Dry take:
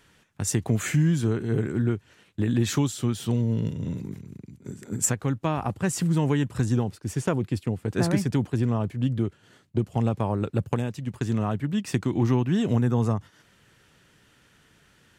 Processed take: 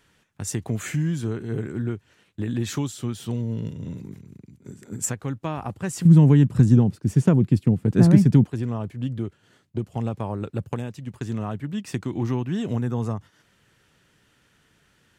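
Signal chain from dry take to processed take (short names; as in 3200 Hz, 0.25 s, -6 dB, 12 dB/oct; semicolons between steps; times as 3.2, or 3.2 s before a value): 6.05–8.44 bell 170 Hz +14.5 dB 2.1 oct; gain -3 dB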